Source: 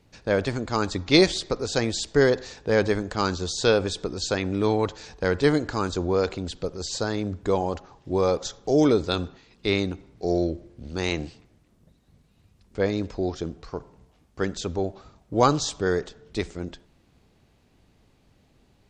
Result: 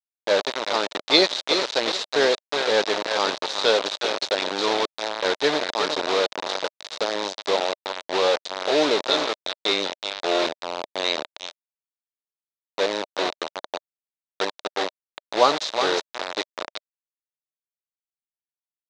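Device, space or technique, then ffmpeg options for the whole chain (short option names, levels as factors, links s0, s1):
hand-held game console: -af "aecho=1:1:366|732|1098|1464|1830:0.398|0.159|0.0637|0.0255|0.0102,acrusher=bits=3:mix=0:aa=0.000001,highpass=420,equalizer=f=610:t=q:w=4:g=6,equalizer=f=920:t=q:w=4:g=3,equalizer=f=3800:t=q:w=4:g=9,lowpass=f=5900:w=0.5412,lowpass=f=5900:w=1.3066"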